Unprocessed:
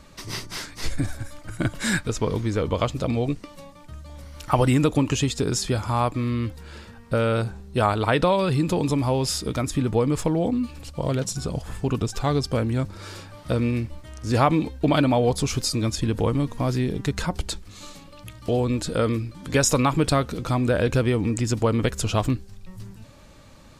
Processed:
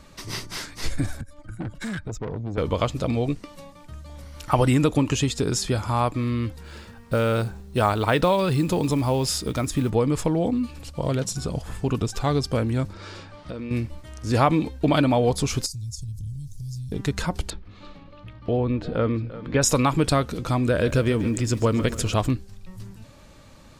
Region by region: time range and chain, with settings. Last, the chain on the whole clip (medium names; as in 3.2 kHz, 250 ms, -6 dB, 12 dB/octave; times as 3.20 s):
1.21–2.58 s: spectral contrast enhancement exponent 1.6 + valve stage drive 27 dB, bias 0.55 + three bands compressed up and down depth 40%
6.64–9.90 s: short-mantissa float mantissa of 4-bit + treble shelf 10 kHz +2.5 dB
12.93–13.71 s: peaking EQ 120 Hz -8 dB 0.32 oct + compression 4:1, threshold -31 dBFS + low-pass 5.3 kHz
15.66–16.92 s: elliptic band-stop 120–5600 Hz, stop band 80 dB + compression 2.5:1, threshold -32 dBFS + word length cut 12-bit, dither none
17.50–19.62 s: distance through air 340 m + delay 345 ms -15 dB
20.64–22.14 s: peaking EQ 800 Hz -9 dB 0.21 oct + bit-crushed delay 138 ms, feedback 55%, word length 8-bit, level -13.5 dB
whole clip: none